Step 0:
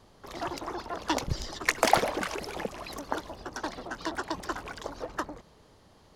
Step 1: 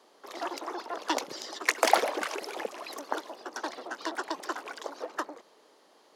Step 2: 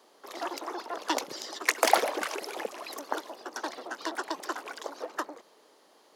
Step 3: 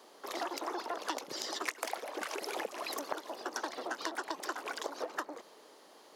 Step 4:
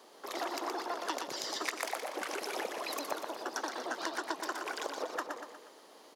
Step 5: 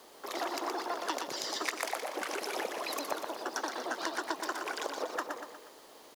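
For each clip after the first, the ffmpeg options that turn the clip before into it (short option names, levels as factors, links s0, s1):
-af "highpass=f=310:w=0.5412,highpass=f=310:w=1.3066"
-af "highshelf=f=11000:g=7.5"
-af "acompressor=threshold=0.0158:ratio=20,volume=1.41"
-af "aecho=1:1:120|240|360|480|600|720:0.531|0.25|0.117|0.0551|0.0259|0.0122"
-af "acrusher=bits=9:mix=0:aa=0.000001,volume=1.19"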